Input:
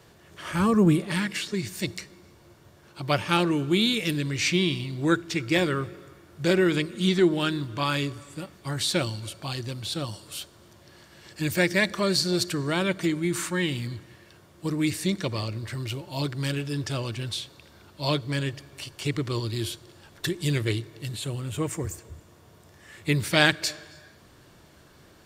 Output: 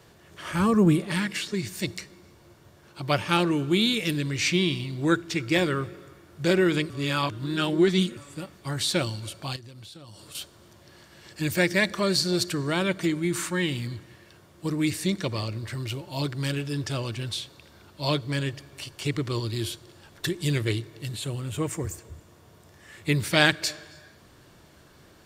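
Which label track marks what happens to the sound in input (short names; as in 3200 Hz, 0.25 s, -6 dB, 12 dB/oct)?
6.900000	8.170000	reverse
9.560000	10.350000	compressor 16:1, threshold -41 dBFS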